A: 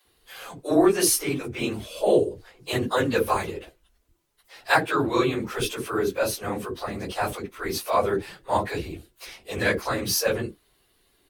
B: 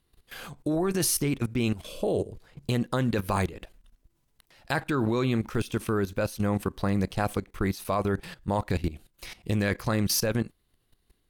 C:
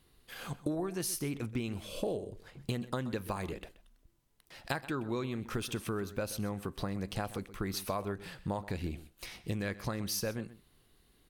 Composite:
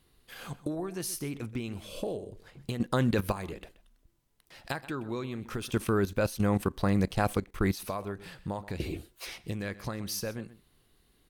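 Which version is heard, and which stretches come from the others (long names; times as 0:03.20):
C
0:02.80–0:03.32: punch in from B
0:05.70–0:07.83: punch in from B
0:08.80–0:09.38: punch in from A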